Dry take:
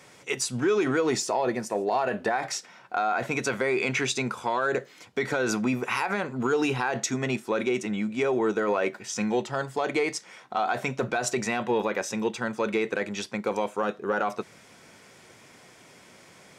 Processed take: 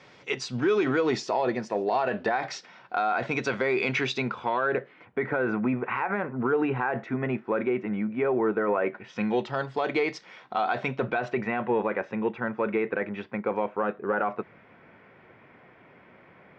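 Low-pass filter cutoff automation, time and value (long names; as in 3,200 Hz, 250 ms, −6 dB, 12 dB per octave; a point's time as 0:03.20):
low-pass filter 24 dB per octave
0:03.98 4,800 Hz
0:05.20 2,100 Hz
0:08.83 2,100 Hz
0:09.43 4,400 Hz
0:10.74 4,400 Hz
0:11.52 2,300 Hz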